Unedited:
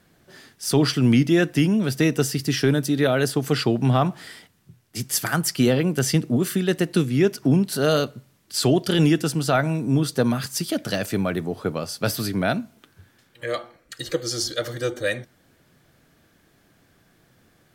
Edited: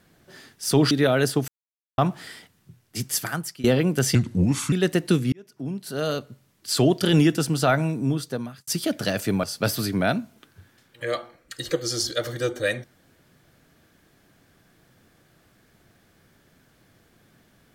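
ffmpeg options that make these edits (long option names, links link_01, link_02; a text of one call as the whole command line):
ffmpeg -i in.wav -filter_complex "[0:a]asplit=10[link_01][link_02][link_03][link_04][link_05][link_06][link_07][link_08][link_09][link_10];[link_01]atrim=end=0.912[link_11];[link_02]atrim=start=2.908:end=3.48,asetpts=PTS-STARTPTS,afade=type=out:start_time=0.568:duration=0.004:curve=hsin[link_12];[link_03]atrim=start=3.48:end=3.98,asetpts=PTS-STARTPTS,volume=0[link_13];[link_04]atrim=start=3.98:end=5.64,asetpts=PTS-STARTPTS,afade=type=in:duration=0.004:curve=hsin,afade=type=out:start_time=1.03:duration=0.63:silence=0.0841395[link_14];[link_05]atrim=start=5.64:end=6.154,asetpts=PTS-STARTPTS,afade=type=in:duration=0.004:curve=hsin:silence=0.0841395[link_15];[link_06]atrim=start=6.15:end=6.58,asetpts=PTS-STARTPTS,asetrate=33075,aresample=44100[link_16];[link_07]atrim=start=6.576:end=7.18,asetpts=PTS-STARTPTS,afade=type=out:start_time=0.6:duration=0.004:curve=hsin[link_17];[link_08]atrim=start=7.18:end=10.53,asetpts=PTS-STARTPTS,afade=type=in:duration=1.56,afade=type=out:start_time=2.47:duration=0.88[link_18];[link_09]atrim=start=10.53:end=11.292,asetpts=PTS-STARTPTS,afade=type=in:duration=0.004:curve=hsin[link_19];[link_10]atrim=start=11.838[link_20];[link_12][link_13][link_14][link_15]concat=n=4:v=0:a=1[link_21];[link_11][link_21]acrossfade=duration=0.004:curve1=hsin:curve2=hsin[link_22];[link_22][link_16]acrossfade=duration=0.004:curve1=hsin:curve2=hsin[link_23];[link_17][link_18][link_19]concat=n=3:v=0:a=1[link_24];[link_23][link_24]acrossfade=duration=0.004:curve1=hsin:curve2=hsin[link_25];[link_25][link_20]acrossfade=duration=0.004:curve1=hsin:curve2=hsin" out.wav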